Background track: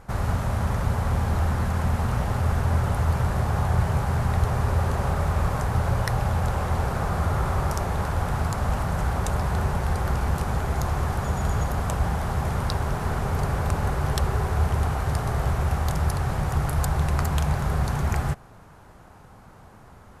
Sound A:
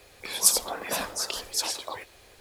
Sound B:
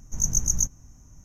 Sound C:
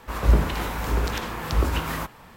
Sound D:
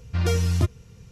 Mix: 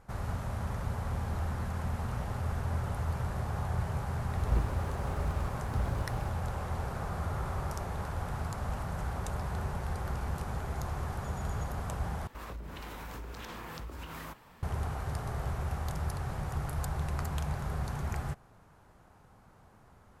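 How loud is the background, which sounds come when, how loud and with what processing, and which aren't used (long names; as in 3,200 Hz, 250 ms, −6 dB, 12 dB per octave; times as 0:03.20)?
background track −10.5 dB
0:04.23: mix in C −12.5 dB + windowed peak hold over 65 samples
0:12.27: overwrite with C −9 dB + downward compressor 12 to 1, threshold −29 dBFS
not used: A, B, D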